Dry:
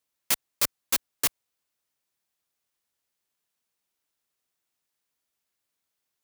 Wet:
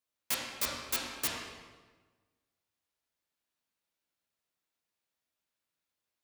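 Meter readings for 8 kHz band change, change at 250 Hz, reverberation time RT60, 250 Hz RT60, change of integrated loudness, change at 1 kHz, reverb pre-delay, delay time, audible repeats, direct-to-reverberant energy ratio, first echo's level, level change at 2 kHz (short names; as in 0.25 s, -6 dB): -7.5 dB, -2.0 dB, 1.3 s, 1.5 s, -7.5 dB, -3.0 dB, 6 ms, none, none, -4.0 dB, none, -3.5 dB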